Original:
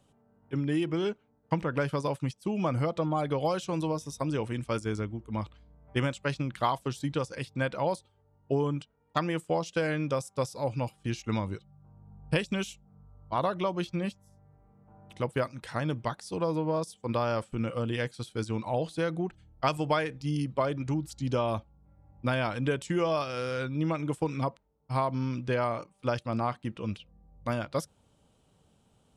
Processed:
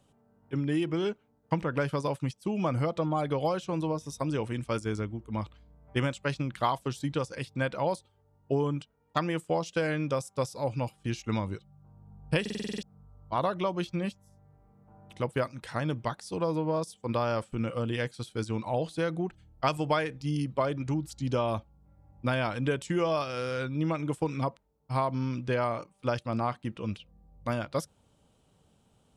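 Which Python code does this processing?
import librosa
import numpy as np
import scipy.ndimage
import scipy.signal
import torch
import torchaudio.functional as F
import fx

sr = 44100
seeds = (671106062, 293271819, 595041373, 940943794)

y = fx.high_shelf(x, sr, hz=3600.0, db=-7.0, at=(3.49, 4.04))
y = fx.buffer_glitch(y, sr, at_s=(12.41,), block=2048, repeats=8)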